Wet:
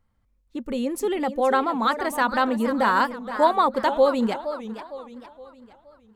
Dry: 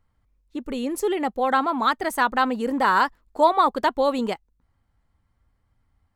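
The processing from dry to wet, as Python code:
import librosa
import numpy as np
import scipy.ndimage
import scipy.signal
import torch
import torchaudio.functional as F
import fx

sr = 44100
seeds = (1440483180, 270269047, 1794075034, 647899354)

y = fx.small_body(x, sr, hz=(220.0, 530.0), ring_ms=100, db=8)
y = fx.echo_warbled(y, sr, ms=465, feedback_pct=43, rate_hz=2.8, cents=213, wet_db=-11.5)
y = F.gain(torch.from_numpy(y), -1.5).numpy()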